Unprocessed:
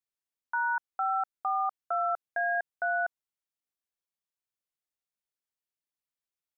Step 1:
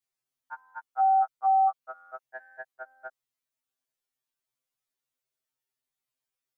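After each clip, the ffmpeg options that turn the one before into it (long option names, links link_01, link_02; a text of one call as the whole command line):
ffmpeg -i in.wav -af "afftfilt=real='re*2.45*eq(mod(b,6),0)':imag='im*2.45*eq(mod(b,6),0)':win_size=2048:overlap=0.75,volume=5.5dB" out.wav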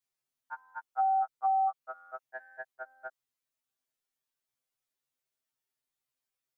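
ffmpeg -i in.wav -af "acompressor=threshold=-24dB:ratio=6,volume=-1dB" out.wav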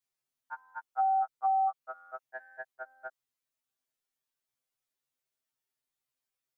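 ffmpeg -i in.wav -af anull out.wav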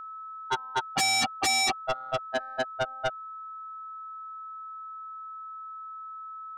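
ffmpeg -i in.wav -af "adynamicsmooth=sensitivity=4:basefreq=660,aeval=exprs='val(0)+0.00126*sin(2*PI*1300*n/s)':channel_layout=same,aeval=exprs='0.0841*sin(PI/2*6.31*val(0)/0.0841)':channel_layout=same" out.wav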